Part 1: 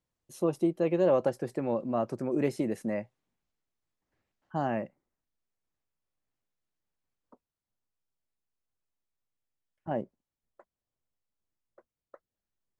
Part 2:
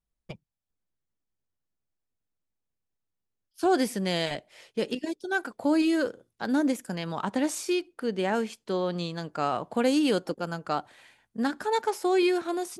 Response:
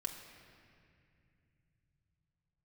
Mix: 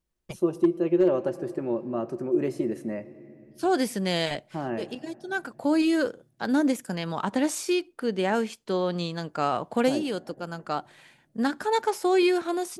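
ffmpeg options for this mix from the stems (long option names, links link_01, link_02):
-filter_complex "[0:a]equalizer=frequency=360:width=6.9:gain=11,volume=-4.5dB,asplit=3[link_01][link_02][link_03];[link_02]volume=-5dB[link_04];[1:a]volume=2dB[link_05];[link_03]apad=whole_len=564381[link_06];[link_05][link_06]sidechaincompress=threshold=-37dB:ratio=3:attack=5.5:release=1470[link_07];[2:a]atrim=start_sample=2205[link_08];[link_04][link_08]afir=irnorm=-1:irlink=0[link_09];[link_01][link_07][link_09]amix=inputs=3:normalize=0,asoftclip=type=hard:threshold=-13dB"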